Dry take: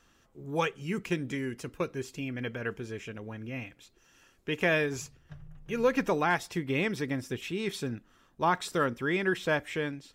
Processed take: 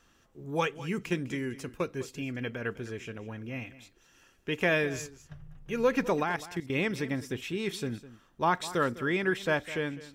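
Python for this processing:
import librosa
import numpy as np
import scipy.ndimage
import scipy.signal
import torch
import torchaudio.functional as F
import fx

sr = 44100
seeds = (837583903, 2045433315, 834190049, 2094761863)

y = fx.level_steps(x, sr, step_db=15, at=(6.23, 6.76))
y = y + 10.0 ** (-16.5 / 20.0) * np.pad(y, (int(205 * sr / 1000.0), 0))[:len(y)]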